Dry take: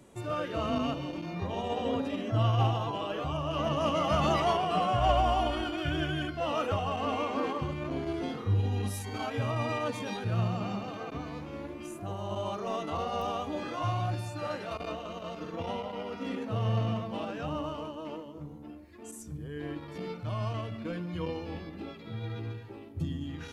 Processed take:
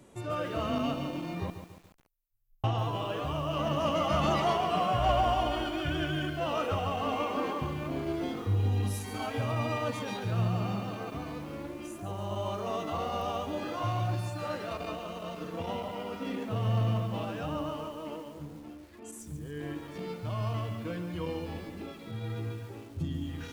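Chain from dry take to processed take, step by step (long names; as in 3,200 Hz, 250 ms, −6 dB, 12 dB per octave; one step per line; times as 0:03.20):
0:01.50–0:02.64: inverse Chebyshev band-stop filter 130–4,100 Hz, stop band 80 dB
in parallel at −8.5 dB: soft clipping −26 dBFS, distortion −13 dB
on the sum: feedback echo at a low word length 141 ms, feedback 55%, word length 8 bits, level −9 dB
level −3 dB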